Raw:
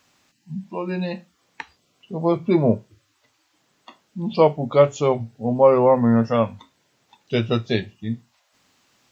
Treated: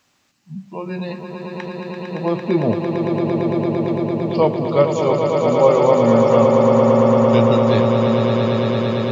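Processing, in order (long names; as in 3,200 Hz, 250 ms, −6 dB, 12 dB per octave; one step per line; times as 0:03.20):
echo that builds up and dies away 113 ms, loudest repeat 8, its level −6.5 dB
level −1 dB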